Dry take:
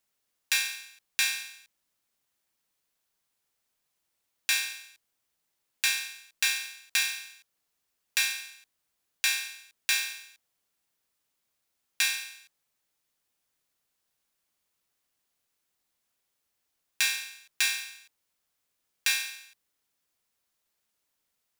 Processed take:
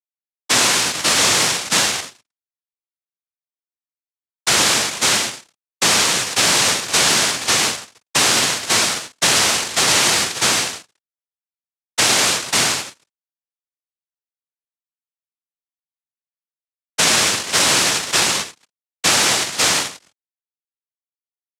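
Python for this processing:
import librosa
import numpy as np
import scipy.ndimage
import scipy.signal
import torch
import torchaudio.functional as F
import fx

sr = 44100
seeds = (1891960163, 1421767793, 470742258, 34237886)

p1 = fx.partial_stretch(x, sr, pct=120)
p2 = fx.peak_eq(p1, sr, hz=2700.0, db=6.0, octaves=1.4)
p3 = p2 + fx.echo_single(p2, sr, ms=536, db=-10.0, dry=0)
p4 = fx.rev_plate(p3, sr, seeds[0], rt60_s=3.1, hf_ratio=0.35, predelay_ms=0, drr_db=3.0)
p5 = fx.chorus_voices(p4, sr, voices=4, hz=0.16, base_ms=13, depth_ms=1.3, mix_pct=20)
p6 = fx.high_shelf(p5, sr, hz=5700.0, db=-10.0)
p7 = fx.fuzz(p6, sr, gain_db=47.0, gate_db=-55.0)
p8 = fx.noise_vocoder(p7, sr, seeds[1], bands=1)
y = fx.band_squash(p8, sr, depth_pct=40)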